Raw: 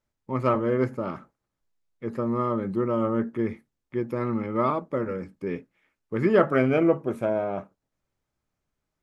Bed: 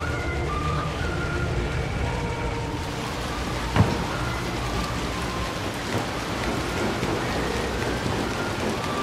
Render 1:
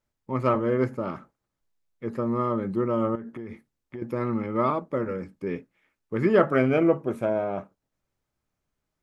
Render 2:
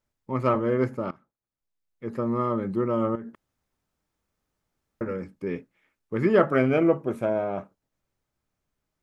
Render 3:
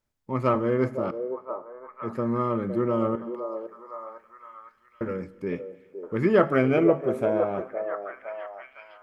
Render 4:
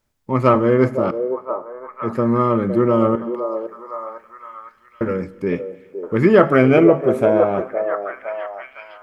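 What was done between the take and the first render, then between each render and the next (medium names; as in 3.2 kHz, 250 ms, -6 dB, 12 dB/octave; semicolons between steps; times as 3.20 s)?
3.15–4.02 s: compression 16:1, threshold -32 dBFS
1.11–2.19 s: fade in quadratic, from -17 dB; 3.35–5.01 s: room tone
repeats whose band climbs or falls 511 ms, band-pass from 520 Hz, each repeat 0.7 oct, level -5 dB; Schroeder reverb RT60 1.7 s, combs from 26 ms, DRR 19 dB
trim +9 dB; peak limiter -2 dBFS, peak gain reduction 3 dB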